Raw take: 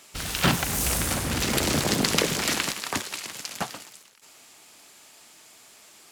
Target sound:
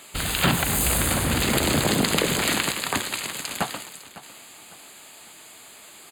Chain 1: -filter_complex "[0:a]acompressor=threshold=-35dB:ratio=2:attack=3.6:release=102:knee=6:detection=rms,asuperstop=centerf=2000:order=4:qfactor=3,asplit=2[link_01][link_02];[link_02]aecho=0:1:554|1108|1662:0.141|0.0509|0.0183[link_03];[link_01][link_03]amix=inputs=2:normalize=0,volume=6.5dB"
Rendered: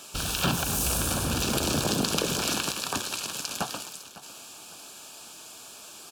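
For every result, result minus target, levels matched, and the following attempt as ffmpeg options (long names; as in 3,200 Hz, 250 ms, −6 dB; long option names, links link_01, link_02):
downward compressor: peak gain reduction +5 dB; 2,000 Hz band −3.5 dB
-filter_complex "[0:a]acompressor=threshold=-25dB:ratio=2:attack=3.6:release=102:knee=6:detection=rms,asuperstop=centerf=2000:order=4:qfactor=3,asplit=2[link_01][link_02];[link_02]aecho=0:1:554|1108|1662:0.141|0.0509|0.0183[link_03];[link_01][link_03]amix=inputs=2:normalize=0,volume=6.5dB"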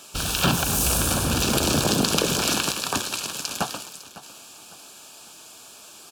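2,000 Hz band −3.5 dB
-filter_complex "[0:a]acompressor=threshold=-25dB:ratio=2:attack=3.6:release=102:knee=6:detection=rms,asuperstop=centerf=5600:order=4:qfactor=3,asplit=2[link_01][link_02];[link_02]aecho=0:1:554|1108|1662:0.141|0.0509|0.0183[link_03];[link_01][link_03]amix=inputs=2:normalize=0,volume=6.5dB"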